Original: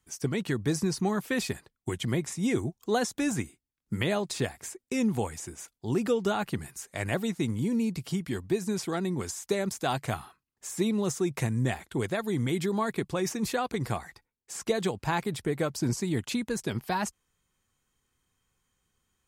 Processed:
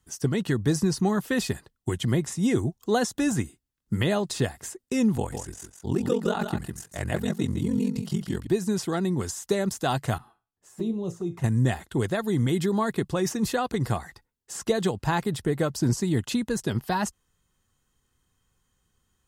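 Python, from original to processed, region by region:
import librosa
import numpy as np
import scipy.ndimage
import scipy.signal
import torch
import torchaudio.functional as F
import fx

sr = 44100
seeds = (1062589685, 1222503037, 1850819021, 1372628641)

y = fx.chain(x, sr, fx.ring_mod(carrier_hz=22.0),
    fx.echo_single(ms=156, db=-7.0), at=(5.16, 8.47))
y = fx.chain(y, sr, fx.high_shelf(hz=2100.0, db=-10.0),
    fx.comb_fb(f0_hz=57.0, decay_s=0.3, harmonics='all', damping=0.0, mix_pct=70),
    fx.env_flanger(rest_ms=11.6, full_db=-29.5), at=(10.18, 11.44))
y = fx.low_shelf(y, sr, hz=180.0, db=5.0)
y = fx.notch(y, sr, hz=2300.0, q=6.6)
y = F.gain(torch.from_numpy(y), 2.5).numpy()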